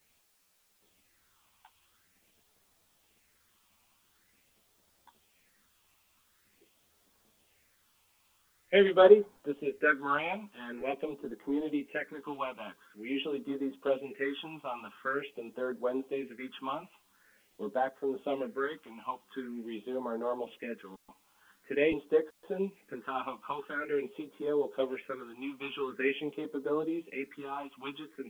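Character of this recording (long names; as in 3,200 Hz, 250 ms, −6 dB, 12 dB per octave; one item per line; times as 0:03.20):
phaser sweep stages 6, 0.46 Hz, lowest notch 450–2,400 Hz
a quantiser's noise floor 12 bits, dither triangular
a shimmering, thickened sound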